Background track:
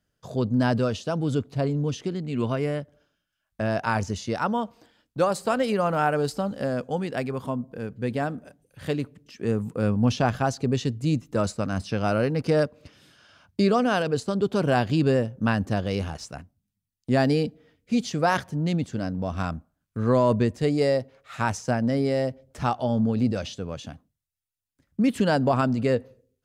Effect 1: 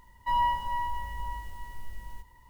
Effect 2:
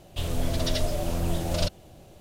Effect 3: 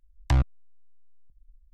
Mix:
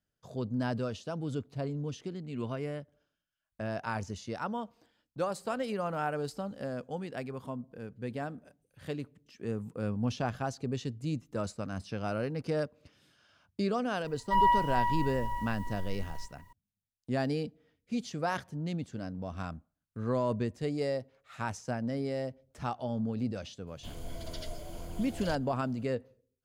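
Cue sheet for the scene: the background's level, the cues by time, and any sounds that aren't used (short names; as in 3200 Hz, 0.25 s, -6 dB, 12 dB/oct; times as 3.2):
background track -10 dB
14.04 add 1 -3.5 dB + comb 7.3 ms, depth 82%
23.67 add 2 -14.5 dB + ripple EQ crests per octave 1.8, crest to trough 8 dB
not used: 3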